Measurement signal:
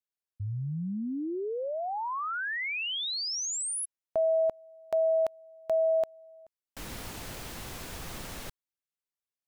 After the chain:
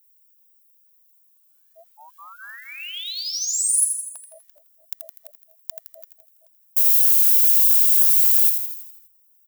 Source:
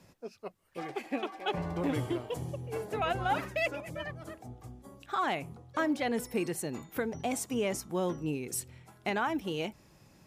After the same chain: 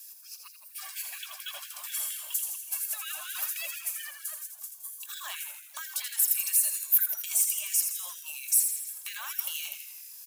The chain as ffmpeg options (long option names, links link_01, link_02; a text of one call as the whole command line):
ffmpeg -i in.wav -filter_complex "[0:a]highpass=200,lowshelf=frequency=490:gain=-11,acrossover=split=3000[link_01][link_02];[link_02]acompressor=threshold=-43dB:ratio=4:attack=1:release=60[link_03];[link_01][link_03]amix=inputs=2:normalize=0,aecho=1:1:1.8:0.39,aphaser=in_gain=1:out_gain=1:delay=3.5:decay=0.28:speed=1.9:type=triangular,acompressor=threshold=-41dB:ratio=6:attack=30:release=27:knee=6:detection=peak,aemphasis=mode=production:type=bsi,bandreject=frequency=2100:width=8.5,asplit=2[link_04][link_05];[link_05]asplit=7[link_06][link_07][link_08][link_09][link_10][link_11][link_12];[link_06]adelay=82,afreqshift=-58,volume=-6.5dB[link_13];[link_07]adelay=164,afreqshift=-116,volume=-11.4dB[link_14];[link_08]adelay=246,afreqshift=-174,volume=-16.3dB[link_15];[link_09]adelay=328,afreqshift=-232,volume=-21.1dB[link_16];[link_10]adelay=410,afreqshift=-290,volume=-26dB[link_17];[link_11]adelay=492,afreqshift=-348,volume=-30.9dB[link_18];[link_12]adelay=574,afreqshift=-406,volume=-35.8dB[link_19];[link_13][link_14][link_15][link_16][link_17][link_18][link_19]amix=inputs=7:normalize=0[link_20];[link_04][link_20]amix=inputs=2:normalize=0,crystalizer=i=9:c=0,afftfilt=real='re*gte(b*sr/1024,540*pow(1500/540,0.5+0.5*sin(2*PI*4.3*pts/sr)))':imag='im*gte(b*sr/1024,540*pow(1500/540,0.5+0.5*sin(2*PI*4.3*pts/sr)))':win_size=1024:overlap=0.75,volume=-10dB" out.wav